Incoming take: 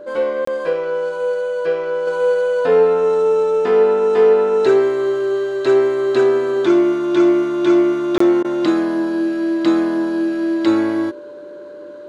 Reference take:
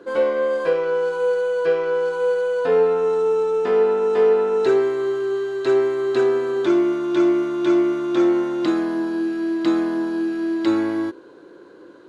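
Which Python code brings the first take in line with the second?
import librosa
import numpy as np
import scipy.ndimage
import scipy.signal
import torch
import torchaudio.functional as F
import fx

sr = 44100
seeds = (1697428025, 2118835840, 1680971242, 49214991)

y = fx.notch(x, sr, hz=590.0, q=30.0)
y = fx.fix_interpolate(y, sr, at_s=(0.45, 8.18), length_ms=24.0)
y = fx.fix_interpolate(y, sr, at_s=(8.43,), length_ms=14.0)
y = fx.gain(y, sr, db=fx.steps((0.0, 0.0), (2.07, -4.0)))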